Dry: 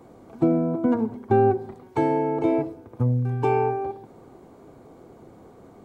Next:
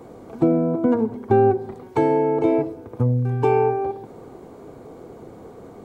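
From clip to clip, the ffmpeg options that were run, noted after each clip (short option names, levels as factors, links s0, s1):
-filter_complex "[0:a]equalizer=f=460:t=o:w=0.31:g=5,asplit=2[s0][s1];[s1]acompressor=threshold=0.0316:ratio=6,volume=0.944[s2];[s0][s2]amix=inputs=2:normalize=0"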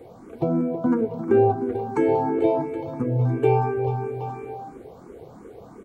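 -filter_complex "[0:a]aecho=1:1:186|439|773|861:0.224|0.282|0.251|0.178,asplit=2[s0][s1];[s1]afreqshift=2.9[s2];[s0][s2]amix=inputs=2:normalize=1"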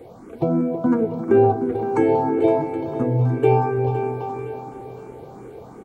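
-af "aecho=1:1:514|1028|1542|2056|2570:0.251|0.121|0.0579|0.0278|0.0133,volume=1.33"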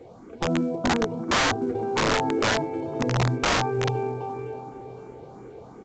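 -af "aeval=exprs='(mod(4.22*val(0)+1,2)-1)/4.22':c=same,volume=0.631" -ar 16000 -c:a pcm_alaw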